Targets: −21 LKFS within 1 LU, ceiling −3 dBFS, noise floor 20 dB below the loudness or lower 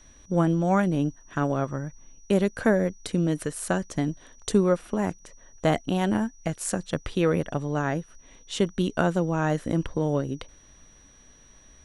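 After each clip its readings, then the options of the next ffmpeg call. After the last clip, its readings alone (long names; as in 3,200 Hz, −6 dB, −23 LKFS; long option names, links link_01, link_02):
interfering tone 5,800 Hz; level of the tone −55 dBFS; integrated loudness −26.5 LKFS; sample peak −7.5 dBFS; target loudness −21.0 LKFS
→ -af "bandreject=frequency=5800:width=30"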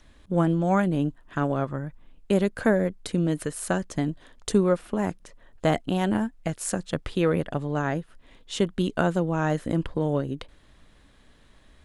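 interfering tone none found; integrated loudness −26.5 LKFS; sample peak −7.5 dBFS; target loudness −21.0 LKFS
→ -af "volume=5.5dB,alimiter=limit=-3dB:level=0:latency=1"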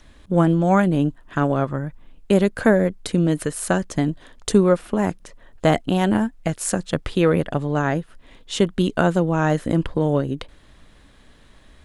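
integrated loudness −21.0 LKFS; sample peak −3.0 dBFS; background noise floor −51 dBFS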